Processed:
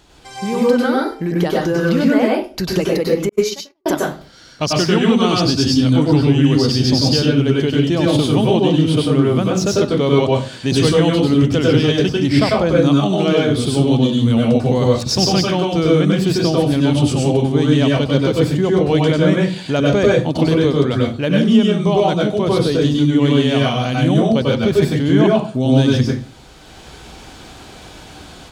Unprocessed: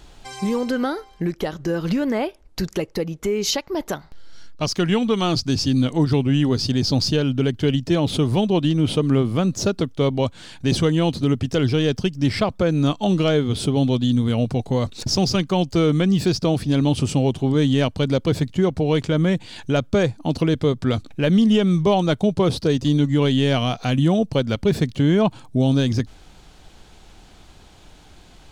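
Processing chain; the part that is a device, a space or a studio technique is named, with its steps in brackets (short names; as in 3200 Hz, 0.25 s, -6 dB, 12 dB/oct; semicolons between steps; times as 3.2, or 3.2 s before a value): far laptop microphone (reverb RT60 0.35 s, pre-delay 92 ms, DRR -3 dB; HPF 110 Hz 6 dB/oct; AGC gain up to 9.5 dB); 3.29–3.86 gate -10 dBFS, range -52 dB; gain -1 dB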